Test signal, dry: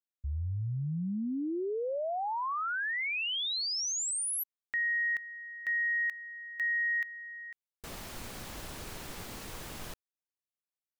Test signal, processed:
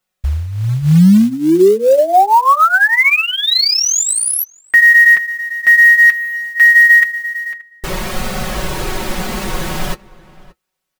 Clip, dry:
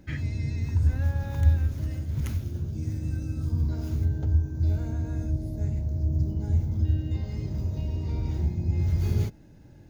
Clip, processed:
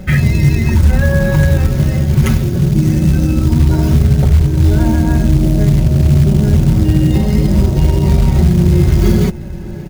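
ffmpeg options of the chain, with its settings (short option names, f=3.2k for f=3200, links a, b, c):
-filter_complex "[0:a]highshelf=f=3.4k:g=-7,aecho=1:1:5.4:0.76,flanger=delay=1.5:depth=6.5:regen=-51:speed=0.24:shape=sinusoidal,acrusher=bits=6:mode=log:mix=0:aa=0.000001,asplit=2[a][b];[b]adelay=577.3,volume=-21dB,highshelf=f=4k:g=-13[c];[a][c]amix=inputs=2:normalize=0,alimiter=level_in=26.5dB:limit=-1dB:release=50:level=0:latency=1,volume=-1dB"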